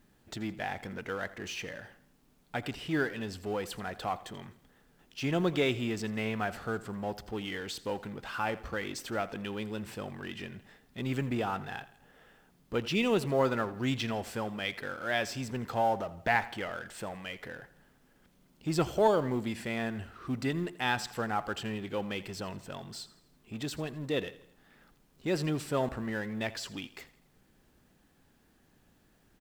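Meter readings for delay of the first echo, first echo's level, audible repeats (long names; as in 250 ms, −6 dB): 83 ms, −18.0 dB, 3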